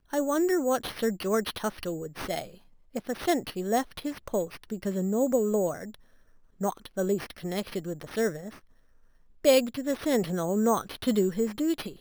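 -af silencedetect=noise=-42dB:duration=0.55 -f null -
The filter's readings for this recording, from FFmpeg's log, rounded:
silence_start: 5.95
silence_end: 6.61 | silence_duration: 0.66
silence_start: 8.58
silence_end: 9.45 | silence_duration: 0.87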